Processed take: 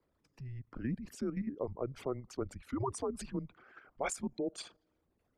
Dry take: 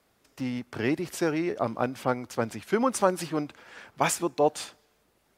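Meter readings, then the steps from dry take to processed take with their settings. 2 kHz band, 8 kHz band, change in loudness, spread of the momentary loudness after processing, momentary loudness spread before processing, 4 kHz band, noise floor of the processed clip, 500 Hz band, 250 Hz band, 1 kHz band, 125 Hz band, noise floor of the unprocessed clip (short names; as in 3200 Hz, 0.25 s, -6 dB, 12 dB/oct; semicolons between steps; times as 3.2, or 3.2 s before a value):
-15.0 dB, -11.0 dB, -11.0 dB, 12 LU, 12 LU, -12.5 dB, -79 dBFS, -12.0 dB, -9.5 dB, -15.0 dB, -5.5 dB, -69 dBFS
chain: formant sharpening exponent 2; level quantiser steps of 9 dB; frequency shift -130 Hz; gain -6.5 dB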